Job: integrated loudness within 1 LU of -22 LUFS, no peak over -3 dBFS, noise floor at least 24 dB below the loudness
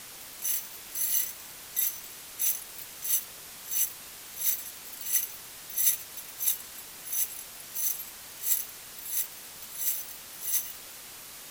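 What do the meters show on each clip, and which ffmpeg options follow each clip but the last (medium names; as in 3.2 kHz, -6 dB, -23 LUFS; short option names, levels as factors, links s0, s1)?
noise floor -45 dBFS; noise floor target -54 dBFS; loudness -29.5 LUFS; peak level -9.0 dBFS; loudness target -22.0 LUFS
-> -af "afftdn=nr=9:nf=-45"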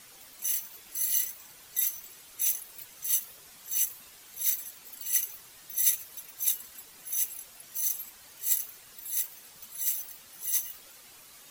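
noise floor -53 dBFS; noise floor target -54 dBFS
-> -af "afftdn=nr=6:nf=-53"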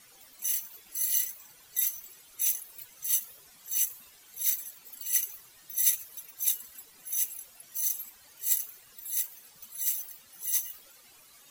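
noise floor -57 dBFS; loudness -29.5 LUFS; peak level -9.0 dBFS; loudness target -22.0 LUFS
-> -af "volume=2.37,alimiter=limit=0.708:level=0:latency=1"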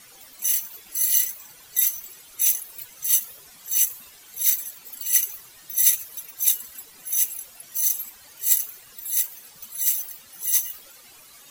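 loudness -22.0 LUFS; peak level -3.0 dBFS; noise floor -49 dBFS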